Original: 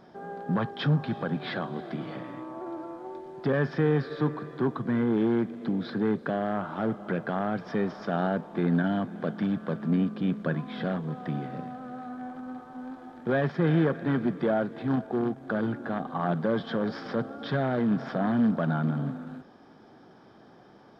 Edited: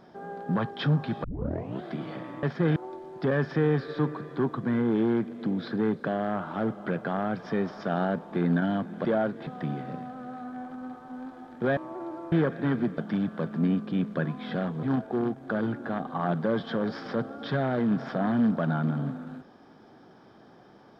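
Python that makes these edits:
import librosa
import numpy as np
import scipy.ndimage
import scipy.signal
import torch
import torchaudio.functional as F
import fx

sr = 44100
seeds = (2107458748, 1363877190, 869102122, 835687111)

y = fx.edit(x, sr, fx.tape_start(start_s=1.24, length_s=0.6),
    fx.swap(start_s=2.43, length_s=0.55, other_s=13.42, other_length_s=0.33),
    fx.swap(start_s=9.27, length_s=1.85, other_s=14.41, other_length_s=0.42), tone=tone)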